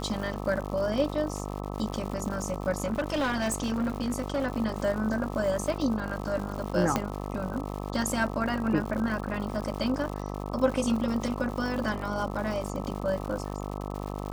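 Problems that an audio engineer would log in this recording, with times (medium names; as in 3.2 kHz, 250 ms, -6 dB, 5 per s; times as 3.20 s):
buzz 50 Hz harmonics 26 -35 dBFS
crackle 180 per s -35 dBFS
2.92–4.48 s: clipped -24 dBFS
6.96 s: pop -11 dBFS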